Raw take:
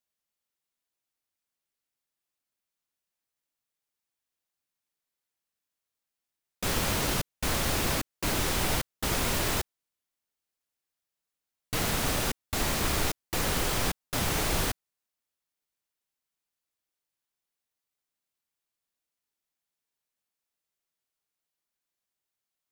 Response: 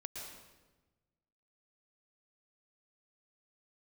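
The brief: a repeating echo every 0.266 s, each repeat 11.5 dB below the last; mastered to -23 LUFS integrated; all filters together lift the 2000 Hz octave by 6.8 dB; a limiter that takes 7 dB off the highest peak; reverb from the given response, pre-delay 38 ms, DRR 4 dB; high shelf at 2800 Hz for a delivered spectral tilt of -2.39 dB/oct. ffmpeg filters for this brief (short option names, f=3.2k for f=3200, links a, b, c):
-filter_complex "[0:a]equalizer=f=2k:t=o:g=7,highshelf=f=2.8k:g=3.5,alimiter=limit=-19dB:level=0:latency=1,aecho=1:1:266|532|798:0.266|0.0718|0.0194,asplit=2[a][b];[1:a]atrim=start_sample=2205,adelay=38[c];[b][c]afir=irnorm=-1:irlink=0,volume=-2dB[d];[a][d]amix=inputs=2:normalize=0,volume=4dB"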